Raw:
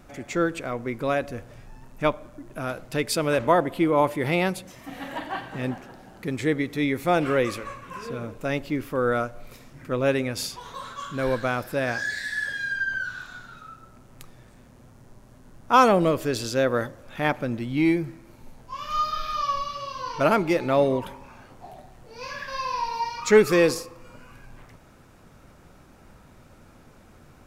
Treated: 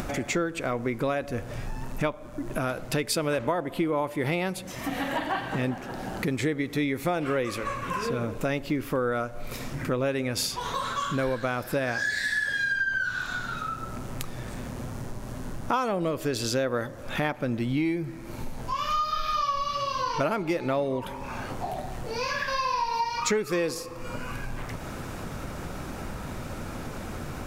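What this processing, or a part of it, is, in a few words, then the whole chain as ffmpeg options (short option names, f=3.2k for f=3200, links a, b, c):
upward and downward compression: -af "acompressor=mode=upward:threshold=-28dB:ratio=2.5,acompressor=threshold=-28dB:ratio=8,volume=4.5dB"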